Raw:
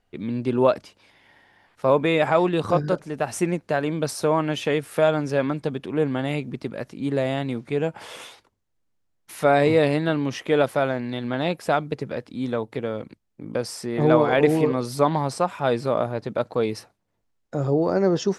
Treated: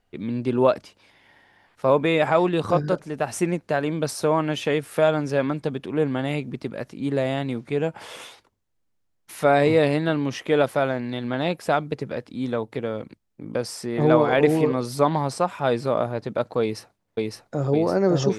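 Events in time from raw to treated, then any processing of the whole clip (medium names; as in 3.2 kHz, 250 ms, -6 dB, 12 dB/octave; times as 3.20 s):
16.61–17.73 s: echo throw 560 ms, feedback 65%, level -1 dB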